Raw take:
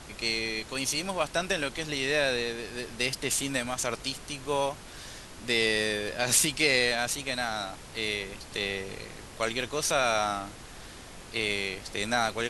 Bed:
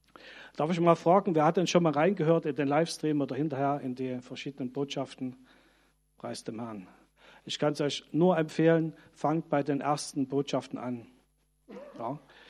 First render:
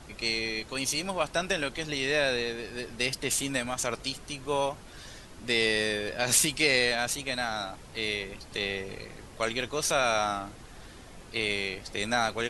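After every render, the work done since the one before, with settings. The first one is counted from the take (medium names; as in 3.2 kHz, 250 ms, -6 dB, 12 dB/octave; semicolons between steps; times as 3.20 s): noise reduction 6 dB, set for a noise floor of -46 dBFS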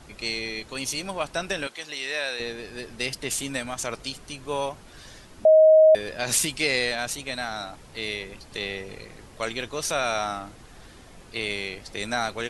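1.67–2.40 s: high-pass 920 Hz 6 dB/octave; 5.45–5.95 s: bleep 629 Hz -10.5 dBFS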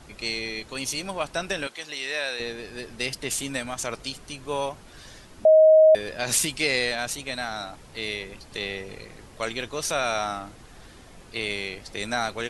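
no audible change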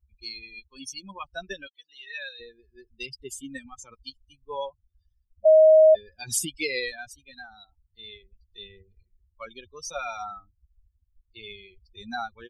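expander on every frequency bin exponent 3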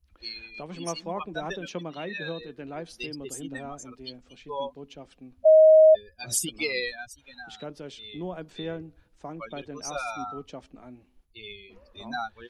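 add bed -11 dB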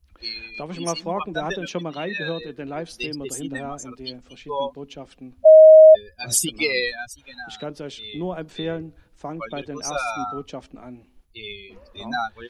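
trim +6.5 dB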